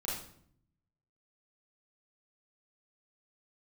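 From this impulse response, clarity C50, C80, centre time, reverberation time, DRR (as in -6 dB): 1.5 dB, 6.5 dB, 53 ms, 0.65 s, -6.5 dB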